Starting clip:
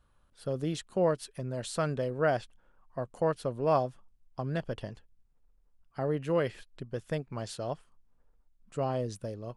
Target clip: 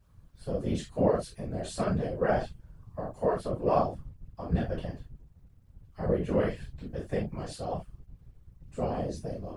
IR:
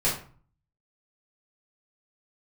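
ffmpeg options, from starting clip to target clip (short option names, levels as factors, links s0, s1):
-filter_complex "[1:a]atrim=start_sample=2205,atrim=end_sample=3969[s0];[0:a][s0]afir=irnorm=-1:irlink=0,acrusher=bits=10:mix=0:aa=0.000001,afftfilt=real='hypot(re,im)*cos(2*PI*random(0))':imag='hypot(re,im)*sin(2*PI*random(1))':win_size=512:overlap=0.75,volume=0.531"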